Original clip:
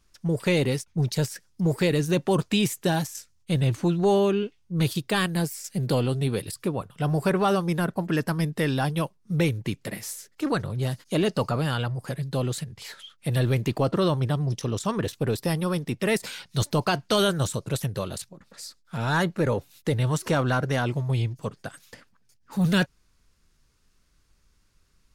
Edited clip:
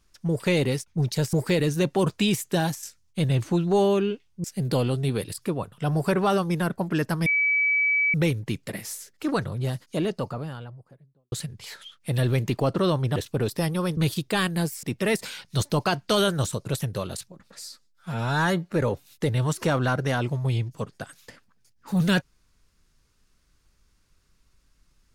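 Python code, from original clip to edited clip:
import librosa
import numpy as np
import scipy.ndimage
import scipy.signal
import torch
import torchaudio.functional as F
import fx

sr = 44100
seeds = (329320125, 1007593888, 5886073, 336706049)

y = fx.studio_fade_out(x, sr, start_s=10.56, length_s=1.94)
y = fx.edit(y, sr, fx.cut(start_s=1.33, length_s=0.32),
    fx.move(start_s=4.76, length_s=0.86, to_s=15.84),
    fx.bleep(start_s=8.44, length_s=0.88, hz=2290.0, db=-19.0),
    fx.cut(start_s=14.34, length_s=0.69),
    fx.stretch_span(start_s=18.63, length_s=0.73, factor=1.5), tone=tone)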